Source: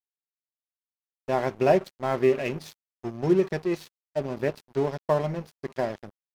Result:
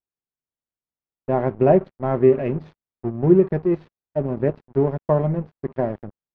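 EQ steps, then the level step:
low-pass filter 1,700 Hz 12 dB per octave
high-frequency loss of the air 53 metres
low-shelf EQ 490 Hz +10.5 dB
0.0 dB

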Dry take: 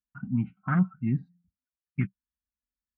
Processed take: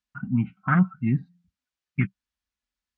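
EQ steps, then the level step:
high-frequency loss of the air 89 metres
tilt shelving filter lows −4 dB, about 1,200 Hz
+7.5 dB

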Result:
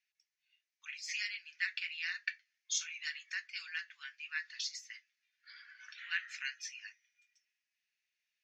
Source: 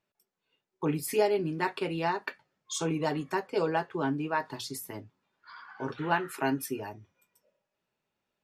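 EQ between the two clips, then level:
Butterworth high-pass 1,800 Hz 48 dB per octave
elliptic low-pass filter 6,400 Hz, stop band 40 dB
parametric band 3,400 Hz −6.5 dB 0.67 octaves
+5.0 dB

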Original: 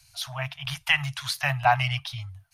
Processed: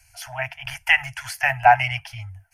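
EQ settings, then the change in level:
high-shelf EQ 6,700 Hz −7.5 dB
phaser with its sweep stopped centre 770 Hz, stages 8
+8.0 dB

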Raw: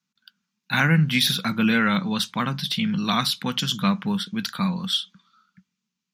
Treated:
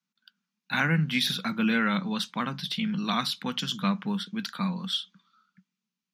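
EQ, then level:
high-pass filter 150 Hz 24 dB per octave
high-shelf EQ 7,400 Hz −7.5 dB
−4.5 dB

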